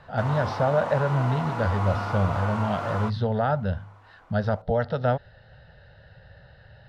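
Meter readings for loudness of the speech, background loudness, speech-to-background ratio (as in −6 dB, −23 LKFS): −26.0 LKFS, −32.0 LKFS, 6.0 dB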